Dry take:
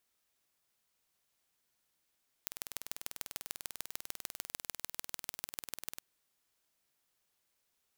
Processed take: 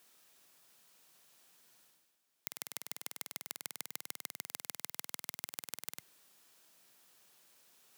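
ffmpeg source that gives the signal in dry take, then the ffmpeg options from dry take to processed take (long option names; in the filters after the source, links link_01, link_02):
-f lavfi -i "aevalsrc='0.335*eq(mod(n,2183),0)*(0.5+0.5*eq(mod(n,6549),0))':duration=3.54:sample_rate=44100"
-af "highpass=frequency=130:width=0.5412,highpass=frequency=130:width=1.3066,bandreject=frequency=2100:width=19,areverse,acompressor=mode=upward:threshold=-52dB:ratio=2.5,areverse"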